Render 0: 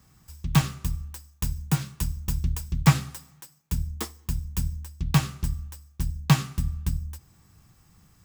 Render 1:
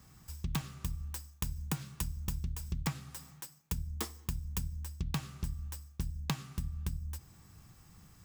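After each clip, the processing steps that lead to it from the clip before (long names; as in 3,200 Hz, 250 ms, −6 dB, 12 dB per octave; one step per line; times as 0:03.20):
downward compressor 12 to 1, threshold −32 dBFS, peak gain reduction 21 dB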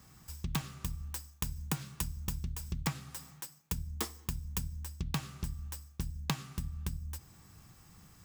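low-shelf EQ 150 Hz −4 dB
level +2 dB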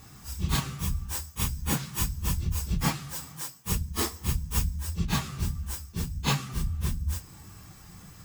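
random phases in long frames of 100 ms
level +9 dB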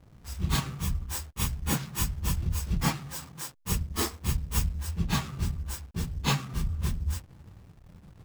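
slack as between gear wheels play −38 dBFS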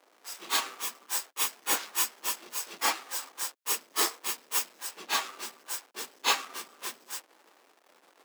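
Bessel high-pass filter 570 Hz, order 8
level +4.5 dB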